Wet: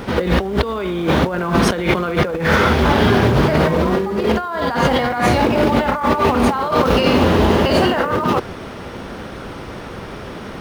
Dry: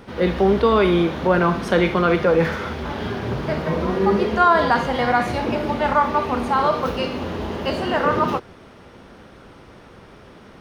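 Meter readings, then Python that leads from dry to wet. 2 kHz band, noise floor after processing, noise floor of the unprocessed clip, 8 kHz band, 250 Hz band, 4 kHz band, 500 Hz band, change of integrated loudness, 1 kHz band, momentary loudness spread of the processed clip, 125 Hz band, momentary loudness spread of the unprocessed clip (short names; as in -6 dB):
+4.0 dB, -32 dBFS, -45 dBFS, n/a, +5.0 dB, +7.0 dB, +3.0 dB, +3.5 dB, +1.5 dB, 17 LU, +7.0 dB, 10 LU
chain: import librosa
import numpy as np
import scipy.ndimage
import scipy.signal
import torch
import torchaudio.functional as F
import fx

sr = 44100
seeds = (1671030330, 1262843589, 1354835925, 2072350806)

p1 = fx.quant_float(x, sr, bits=2)
p2 = x + (p1 * 10.0 ** (-8.5 / 20.0))
p3 = fx.over_compress(p2, sr, threshold_db=-23.0, ratio=-1.0)
y = p3 * 10.0 ** (6.0 / 20.0)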